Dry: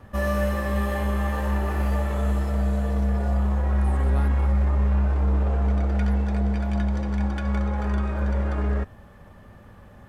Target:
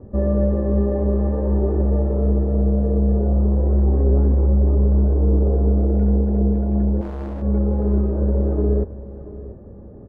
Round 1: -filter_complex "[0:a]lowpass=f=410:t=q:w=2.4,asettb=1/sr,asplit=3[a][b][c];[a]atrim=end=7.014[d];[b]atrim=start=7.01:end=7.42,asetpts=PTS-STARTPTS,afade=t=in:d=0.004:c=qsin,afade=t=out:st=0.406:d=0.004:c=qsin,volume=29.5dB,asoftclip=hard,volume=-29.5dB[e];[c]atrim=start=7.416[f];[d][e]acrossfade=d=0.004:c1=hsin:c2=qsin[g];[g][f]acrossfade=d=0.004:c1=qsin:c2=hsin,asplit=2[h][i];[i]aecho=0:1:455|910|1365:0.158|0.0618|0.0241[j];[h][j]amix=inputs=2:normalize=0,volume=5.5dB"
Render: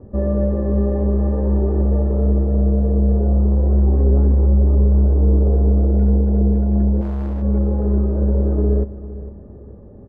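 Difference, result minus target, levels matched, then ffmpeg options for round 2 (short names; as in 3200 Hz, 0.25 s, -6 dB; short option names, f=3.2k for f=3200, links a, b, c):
echo 0.228 s early
-filter_complex "[0:a]lowpass=f=410:t=q:w=2.4,asettb=1/sr,asplit=3[a][b][c];[a]atrim=end=7.014[d];[b]atrim=start=7.01:end=7.42,asetpts=PTS-STARTPTS,afade=t=in:d=0.004:c=qsin,afade=t=out:st=0.406:d=0.004:c=qsin,volume=29.5dB,asoftclip=hard,volume=-29.5dB[e];[c]atrim=start=7.416[f];[d][e]acrossfade=d=0.004:c1=hsin:c2=qsin[g];[g][f]acrossfade=d=0.004:c1=qsin:c2=hsin,asplit=2[h][i];[i]aecho=0:1:683|1366|2049:0.158|0.0618|0.0241[j];[h][j]amix=inputs=2:normalize=0,volume=5.5dB"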